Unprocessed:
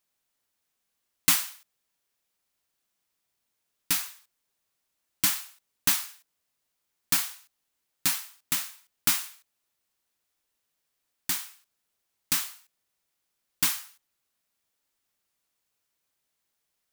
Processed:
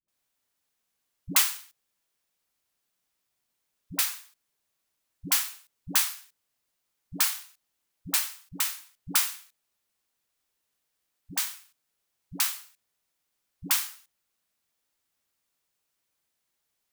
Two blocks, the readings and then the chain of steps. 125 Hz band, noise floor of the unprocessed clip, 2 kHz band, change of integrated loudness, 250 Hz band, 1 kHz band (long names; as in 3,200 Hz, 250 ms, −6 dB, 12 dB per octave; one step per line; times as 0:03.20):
0.0 dB, −80 dBFS, 0.0 dB, 0.0 dB, 0.0 dB, 0.0 dB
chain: all-pass dispersion highs, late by 83 ms, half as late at 360 Hz